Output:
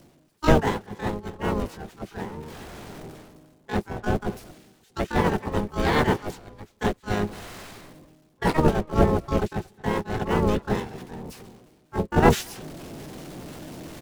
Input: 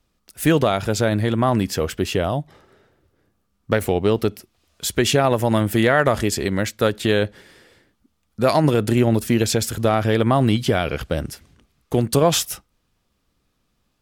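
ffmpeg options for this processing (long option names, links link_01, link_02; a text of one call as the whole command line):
ffmpeg -i in.wav -filter_complex "[0:a]aeval=exprs='val(0)+0.5*0.0944*sgn(val(0))':channel_layout=same,agate=range=-44dB:threshold=-12dB:ratio=16:detection=peak,bass=frequency=250:gain=7,treble=frequency=4000:gain=-1,areverse,acompressor=mode=upward:threshold=-18dB:ratio=2.5,areverse,asplit=2[link_01][link_02];[link_02]adelay=230,highpass=300,lowpass=3400,asoftclip=type=hard:threshold=-23dB,volume=-18dB[link_03];[link_01][link_03]amix=inputs=2:normalize=0,aeval=exprs='val(0)*sin(2*PI*310*n/s)':channel_layout=same,asplit=4[link_04][link_05][link_06][link_07];[link_05]asetrate=22050,aresample=44100,atempo=2,volume=-1dB[link_08];[link_06]asetrate=37084,aresample=44100,atempo=1.18921,volume=-5dB[link_09];[link_07]asetrate=88200,aresample=44100,atempo=0.5,volume=-5dB[link_10];[link_04][link_08][link_09][link_10]amix=inputs=4:normalize=0,volume=-1.5dB" out.wav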